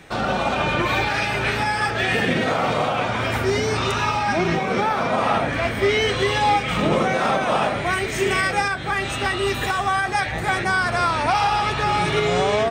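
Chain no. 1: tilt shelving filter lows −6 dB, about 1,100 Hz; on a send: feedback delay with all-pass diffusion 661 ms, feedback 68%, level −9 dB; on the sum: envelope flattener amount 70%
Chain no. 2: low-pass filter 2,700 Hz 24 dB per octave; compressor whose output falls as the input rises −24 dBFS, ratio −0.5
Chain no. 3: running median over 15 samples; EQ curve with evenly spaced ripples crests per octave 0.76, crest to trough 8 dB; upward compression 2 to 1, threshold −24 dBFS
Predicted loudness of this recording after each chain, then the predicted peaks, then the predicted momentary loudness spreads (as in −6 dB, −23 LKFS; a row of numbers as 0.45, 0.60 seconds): −16.0, −24.5, −21.5 LKFS; −4.0, −9.5, −7.0 dBFS; 1, 4, 5 LU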